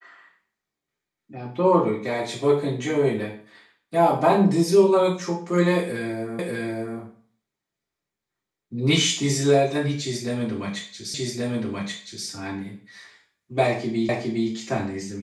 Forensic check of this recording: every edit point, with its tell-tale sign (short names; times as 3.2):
6.39 repeat of the last 0.59 s
11.14 repeat of the last 1.13 s
14.09 repeat of the last 0.41 s